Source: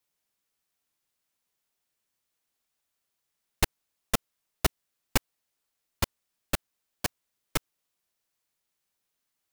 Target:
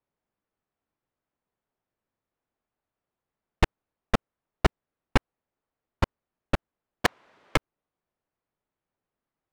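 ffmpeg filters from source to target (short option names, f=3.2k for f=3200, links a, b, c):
-filter_complex "[0:a]adynamicsmooth=sensitivity=1:basefreq=1.3k,asettb=1/sr,asplit=3[a][b][c];[a]atrim=end=7.054[d];[b]atrim=start=7.05:end=7.56,asetpts=PTS-STARTPTS,afade=t=in:d=0.004:c=qsin,afade=t=out:st=0.506:d=0.004:c=qsin,asplit=2[e][f];[f]highpass=f=720:p=1,volume=39dB,asoftclip=type=tanh:threshold=-15dB[g];[e][g]amix=inputs=2:normalize=0,lowpass=f=6.4k:p=1,volume=-6dB[h];[c]atrim=start=7.556[i];[d][h]acrossfade=d=0.004:c1=hsin:c2=qsin[j];[j][i]acrossfade=d=0.004:c1=qsin:c2=hsin,volume=5.5dB"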